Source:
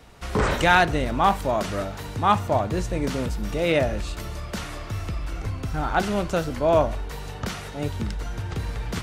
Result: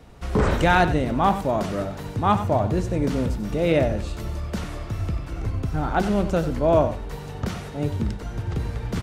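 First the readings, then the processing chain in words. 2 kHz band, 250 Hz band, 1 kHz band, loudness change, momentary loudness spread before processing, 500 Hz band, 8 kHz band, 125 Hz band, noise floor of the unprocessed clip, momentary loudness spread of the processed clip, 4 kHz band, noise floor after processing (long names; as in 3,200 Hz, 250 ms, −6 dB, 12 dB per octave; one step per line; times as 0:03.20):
−3.0 dB, +4.0 dB, −0.5 dB, +1.0 dB, 12 LU, +1.0 dB, −4.0 dB, +3.5 dB, −36 dBFS, 11 LU, −4.0 dB, −35 dBFS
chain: tilt shelving filter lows +4.5 dB, about 700 Hz
mains-hum notches 50/100 Hz
on a send: single-tap delay 94 ms −12 dB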